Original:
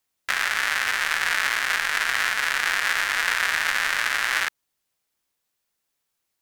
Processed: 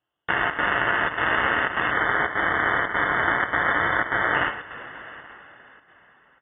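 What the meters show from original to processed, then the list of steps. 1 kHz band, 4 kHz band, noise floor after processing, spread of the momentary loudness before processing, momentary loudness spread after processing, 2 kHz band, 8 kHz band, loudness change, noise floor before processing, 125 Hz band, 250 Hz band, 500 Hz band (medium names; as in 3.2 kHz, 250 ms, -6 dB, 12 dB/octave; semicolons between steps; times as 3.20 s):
+5.5 dB, -8.0 dB, -59 dBFS, 2 LU, 16 LU, 0.0 dB, under -40 dB, 0.0 dB, -79 dBFS, no reading, +16.0 dB, +12.0 dB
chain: bass shelf 210 Hz -3.5 dB; two-slope reverb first 0.28 s, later 4.3 s, from -18 dB, DRR 2.5 dB; square tremolo 1.7 Hz, depth 65%, duty 85%; static phaser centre 300 Hz, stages 6; on a send: delay 829 ms -22.5 dB; on the sum: time-frequency box 1.91–4.35 s, 530–1200 Hz -25 dB; frequency inversion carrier 3.5 kHz; high-pass 100 Hz 6 dB/octave; trim +5.5 dB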